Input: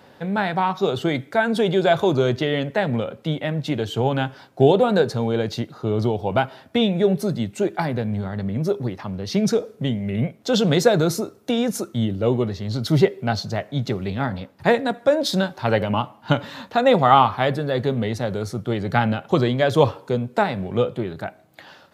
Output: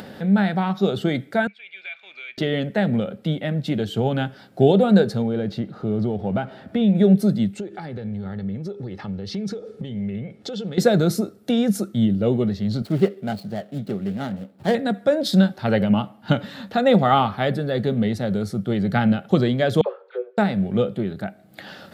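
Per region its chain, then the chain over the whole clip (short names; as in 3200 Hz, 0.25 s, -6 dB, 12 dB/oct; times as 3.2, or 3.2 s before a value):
1.47–2.38 G.711 law mismatch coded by A + ladder band-pass 2400 Hz, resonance 90% + high shelf 3100 Hz -11.5 dB
5.22–6.95 G.711 law mismatch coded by mu + LPF 2000 Hz 6 dB/oct + compressor 1.5:1, threshold -24 dBFS
7.54–10.78 LPF 7200 Hz + comb 2.3 ms, depth 44% + compressor 8:1, threshold -28 dBFS
12.82–14.75 median filter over 25 samples + HPF 260 Hz 6 dB/oct
19.81–20.38 rippled Chebyshev high-pass 360 Hz, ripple 9 dB + air absorption 330 m + dispersion lows, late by 54 ms, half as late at 1400 Hz
whole clip: thirty-one-band EQ 200 Hz +11 dB, 1000 Hz -11 dB, 2500 Hz -3 dB, 6300 Hz -5 dB; upward compressor, threshold -28 dBFS; gain -1 dB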